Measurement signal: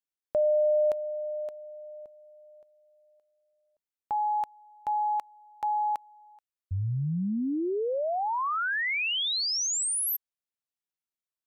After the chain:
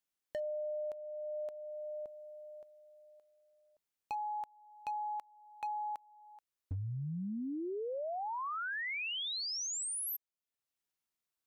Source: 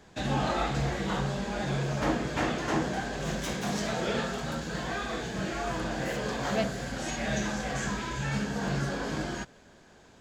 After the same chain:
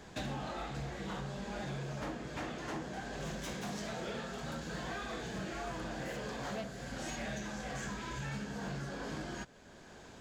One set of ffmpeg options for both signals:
ffmpeg -i in.wav -af "acompressor=threshold=-40dB:ratio=16:attack=70:release=629:knee=6:detection=rms,asoftclip=type=hard:threshold=-37dB,volume=3dB" out.wav

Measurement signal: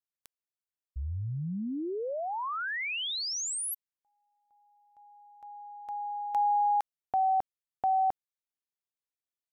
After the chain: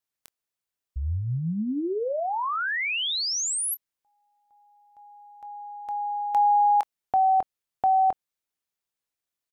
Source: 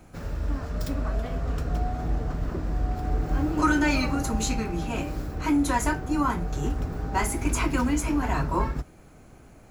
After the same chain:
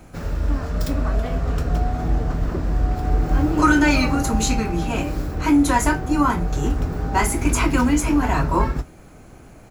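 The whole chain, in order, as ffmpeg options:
ffmpeg -i in.wav -filter_complex "[0:a]asplit=2[link_01][link_02];[link_02]adelay=24,volume=-13.5dB[link_03];[link_01][link_03]amix=inputs=2:normalize=0,volume=6dB" out.wav

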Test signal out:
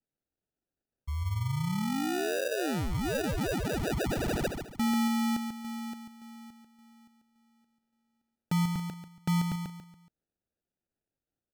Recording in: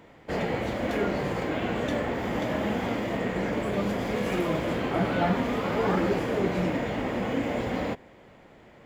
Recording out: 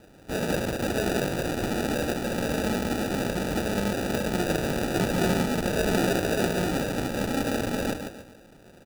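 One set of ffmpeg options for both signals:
ffmpeg -i in.wav -af "aecho=1:1:141|282|423|564:0.501|0.175|0.0614|0.0215,acrusher=samples=41:mix=1:aa=0.000001" out.wav

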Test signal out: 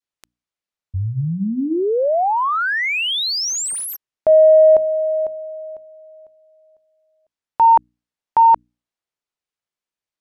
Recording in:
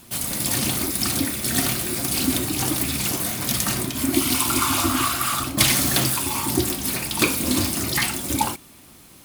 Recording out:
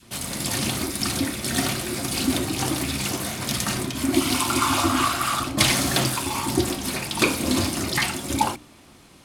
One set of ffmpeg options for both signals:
ffmpeg -i in.wav -af "bandreject=frequency=60:width_type=h:width=6,bandreject=frequency=120:width_type=h:width=6,bandreject=frequency=180:width_type=h:width=6,bandreject=frequency=240:width_type=h:width=6,bandreject=frequency=300:width_type=h:width=6,adynamicsmooth=sensitivity=3.5:basefreq=7900,adynamicequalizer=threshold=0.0398:dfrequency=650:dqfactor=0.85:tfrequency=650:tqfactor=0.85:attack=5:release=100:ratio=0.375:range=2:mode=boostabove:tftype=bell" out.wav

